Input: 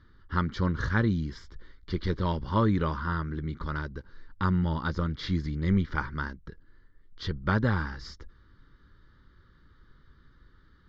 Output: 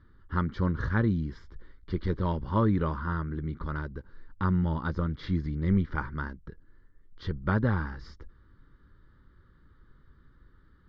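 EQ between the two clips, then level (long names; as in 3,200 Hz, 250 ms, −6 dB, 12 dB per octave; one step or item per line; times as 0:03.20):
low-pass filter 1,500 Hz 6 dB per octave
0.0 dB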